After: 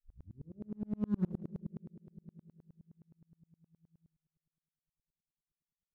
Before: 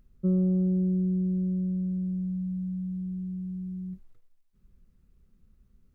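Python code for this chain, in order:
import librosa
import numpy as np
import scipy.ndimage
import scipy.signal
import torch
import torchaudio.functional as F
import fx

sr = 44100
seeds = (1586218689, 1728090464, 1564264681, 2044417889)

p1 = fx.tape_start_head(x, sr, length_s=0.69)
p2 = fx.doppler_pass(p1, sr, speed_mps=43, closest_m=3.0, pass_at_s=1.21)
p3 = fx.low_shelf(p2, sr, hz=130.0, db=-12.0)
p4 = p3 + fx.room_flutter(p3, sr, wall_m=7.5, rt60_s=0.28, dry=0)
p5 = fx.rev_spring(p4, sr, rt60_s=2.6, pass_ms=(57,), chirp_ms=50, drr_db=5.0)
p6 = 10.0 ** (-40.0 / 20.0) * (np.abs((p5 / 10.0 ** (-40.0 / 20.0) + 3.0) % 4.0 - 2.0) - 1.0)
p7 = p5 + (p6 * librosa.db_to_amplitude(-11.5))
p8 = fx.rider(p7, sr, range_db=3, speed_s=2.0)
p9 = fx.tremolo_decay(p8, sr, direction='swelling', hz=9.6, depth_db=37)
y = p9 * librosa.db_to_amplitude(6.5)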